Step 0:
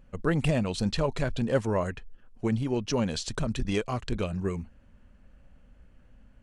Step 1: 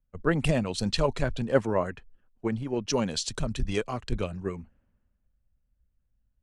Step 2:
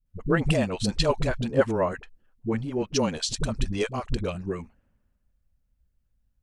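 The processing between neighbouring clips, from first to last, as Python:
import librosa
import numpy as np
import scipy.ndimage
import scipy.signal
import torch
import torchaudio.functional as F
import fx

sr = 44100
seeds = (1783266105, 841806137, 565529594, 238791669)

y1 = fx.hpss(x, sr, part='percussive', gain_db=4)
y1 = fx.band_widen(y1, sr, depth_pct=70)
y1 = y1 * 10.0 ** (-3.0 / 20.0)
y2 = fx.dispersion(y1, sr, late='highs', ms=60.0, hz=330.0)
y2 = y2 * 10.0 ** (2.0 / 20.0)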